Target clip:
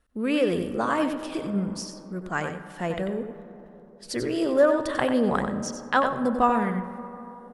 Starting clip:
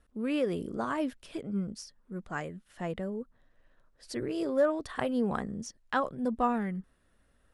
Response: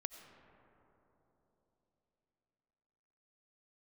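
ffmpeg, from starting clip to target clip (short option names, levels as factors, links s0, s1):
-filter_complex "[0:a]agate=range=0.355:threshold=0.00112:ratio=16:detection=peak,asplit=2[s0][s1];[s1]adelay=93.29,volume=0.447,highshelf=f=4000:g=-2.1[s2];[s0][s2]amix=inputs=2:normalize=0,asplit=2[s3][s4];[1:a]atrim=start_sample=2205,lowshelf=f=420:g=-7.5[s5];[s4][s5]afir=irnorm=-1:irlink=0,volume=2.37[s6];[s3][s6]amix=inputs=2:normalize=0"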